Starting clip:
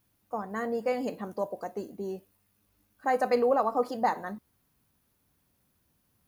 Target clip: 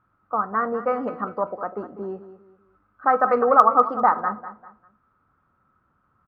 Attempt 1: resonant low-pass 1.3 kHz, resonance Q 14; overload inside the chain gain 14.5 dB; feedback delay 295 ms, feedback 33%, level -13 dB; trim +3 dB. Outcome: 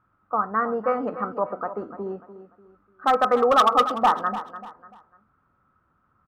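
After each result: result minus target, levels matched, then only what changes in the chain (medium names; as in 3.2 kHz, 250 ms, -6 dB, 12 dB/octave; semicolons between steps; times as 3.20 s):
overload inside the chain: distortion +28 dB; echo 97 ms late
change: overload inside the chain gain 4.5 dB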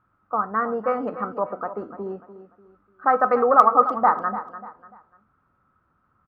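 echo 97 ms late
change: feedback delay 198 ms, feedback 33%, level -13 dB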